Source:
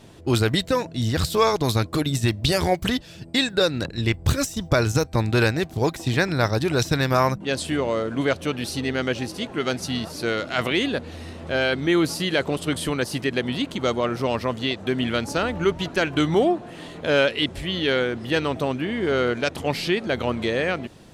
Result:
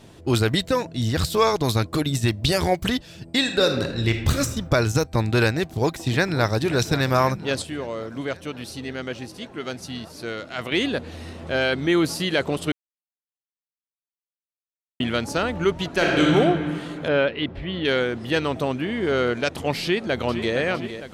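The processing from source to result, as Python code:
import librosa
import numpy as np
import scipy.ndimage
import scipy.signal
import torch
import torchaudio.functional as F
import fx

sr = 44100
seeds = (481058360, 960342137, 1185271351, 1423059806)

y = fx.reverb_throw(x, sr, start_s=3.39, length_s=0.99, rt60_s=0.92, drr_db=4.5)
y = fx.echo_throw(y, sr, start_s=5.56, length_s=1.0, ms=540, feedback_pct=75, wet_db=-14.5)
y = fx.reverb_throw(y, sr, start_s=15.89, length_s=0.45, rt60_s=2.2, drr_db=-2.5)
y = fx.air_absorb(y, sr, metres=330.0, at=(17.08, 17.85))
y = fx.echo_throw(y, sr, start_s=19.82, length_s=0.72, ms=460, feedback_pct=65, wet_db=-10.5)
y = fx.edit(y, sr, fx.clip_gain(start_s=7.62, length_s=3.1, db=-6.5),
    fx.silence(start_s=12.72, length_s=2.28), tone=tone)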